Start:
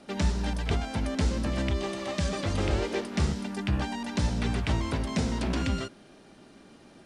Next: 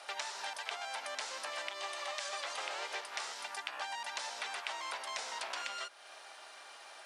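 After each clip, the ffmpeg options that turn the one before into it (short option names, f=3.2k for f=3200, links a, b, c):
-af "highpass=f=730:w=0.5412,highpass=f=730:w=1.3066,acompressor=threshold=-50dB:ratio=2.5,volume=7.5dB"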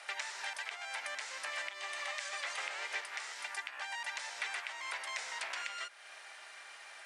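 -af "alimiter=level_in=1.5dB:limit=-24dB:level=0:latency=1:release=277,volume=-1.5dB,equalizer=f=125:t=o:w=1:g=-8,equalizer=f=2k:t=o:w=1:g=11,equalizer=f=8k:t=o:w=1:g=6,volume=-5dB"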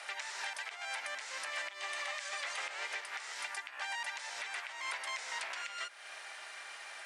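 -af "alimiter=level_in=8.5dB:limit=-24dB:level=0:latency=1:release=243,volume=-8.5dB,volume=4dB"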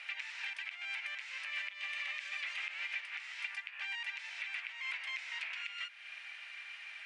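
-af "areverse,acompressor=mode=upward:threshold=-49dB:ratio=2.5,areverse,bandpass=f=2.5k:t=q:w=3.3:csg=0,volume=5dB"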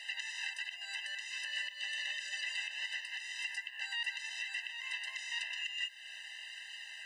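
-af "crystalizer=i=5:c=0,afftfilt=real='re*eq(mod(floor(b*sr/1024/520),2),1)':imag='im*eq(mod(floor(b*sr/1024/520),2),1)':win_size=1024:overlap=0.75,volume=-1dB"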